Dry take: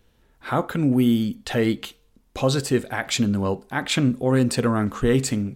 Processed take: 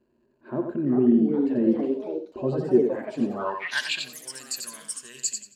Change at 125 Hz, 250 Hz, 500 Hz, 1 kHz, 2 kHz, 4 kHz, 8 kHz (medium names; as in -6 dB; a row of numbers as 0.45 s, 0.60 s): -12.5 dB, -2.5 dB, -1.0 dB, -7.0 dB, -3.5 dB, -4.5 dB, -0.5 dB